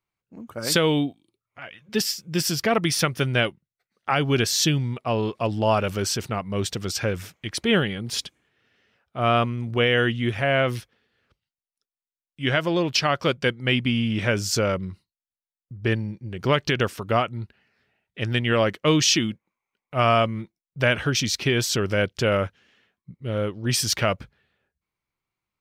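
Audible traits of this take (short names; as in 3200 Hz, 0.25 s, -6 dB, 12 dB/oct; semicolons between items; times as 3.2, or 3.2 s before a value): noise floor -95 dBFS; spectral tilt -4.0 dB/oct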